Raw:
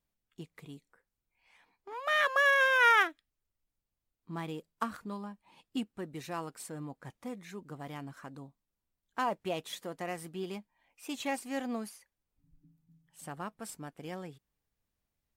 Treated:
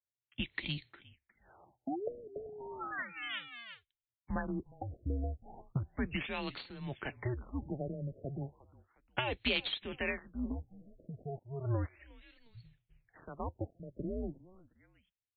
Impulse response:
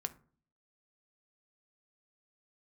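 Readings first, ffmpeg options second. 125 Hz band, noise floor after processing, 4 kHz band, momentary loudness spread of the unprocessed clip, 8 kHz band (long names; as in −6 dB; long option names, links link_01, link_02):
+8.0 dB, below −85 dBFS, 0.0 dB, 24 LU, below −30 dB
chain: -filter_complex "[0:a]highshelf=frequency=1800:width_type=q:width=1.5:gain=9,acrossover=split=170|3000[link_01][link_02][link_03];[link_02]acompressor=threshold=-49dB:ratio=2[link_04];[link_01][link_04][link_03]amix=inputs=3:normalize=0,agate=range=-33dB:threshold=-59dB:ratio=3:detection=peak,aexciter=amount=7.6:drive=8.7:freq=8200,equalizer=frequency=500:width_type=o:width=0.77:gain=2.5,afreqshift=-130,highpass=59,asplit=3[link_05][link_06][link_07];[link_06]adelay=358,afreqshift=-51,volume=-22dB[link_08];[link_07]adelay=716,afreqshift=-102,volume=-31.9dB[link_09];[link_05][link_08][link_09]amix=inputs=3:normalize=0,acompressor=threshold=-32dB:ratio=16,asoftclip=type=hard:threshold=-29.5dB,afftfilt=real='re*lt(b*sr/1024,680*pow(4600/680,0.5+0.5*sin(2*PI*0.34*pts/sr)))':imag='im*lt(b*sr/1024,680*pow(4600/680,0.5+0.5*sin(2*PI*0.34*pts/sr)))':win_size=1024:overlap=0.75,volume=11.5dB"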